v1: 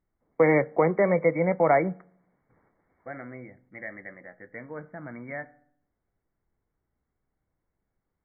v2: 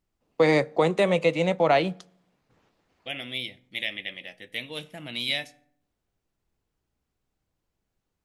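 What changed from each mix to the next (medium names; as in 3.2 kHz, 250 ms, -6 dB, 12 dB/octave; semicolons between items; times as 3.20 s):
second voice: add resonant high shelf 1.9 kHz +7.5 dB, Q 3; master: remove brick-wall FIR low-pass 2.3 kHz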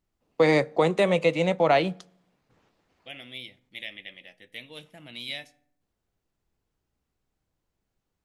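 second voice -7.5 dB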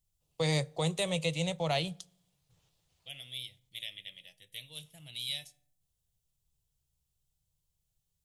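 master: add FFT filter 160 Hz 0 dB, 220 Hz -20 dB, 540 Hz -12 dB, 850 Hz -12 dB, 1.5 kHz -15 dB, 2.2 kHz -11 dB, 3.3 kHz +1 dB, 4.7 kHz 0 dB, 9.2 kHz +9 dB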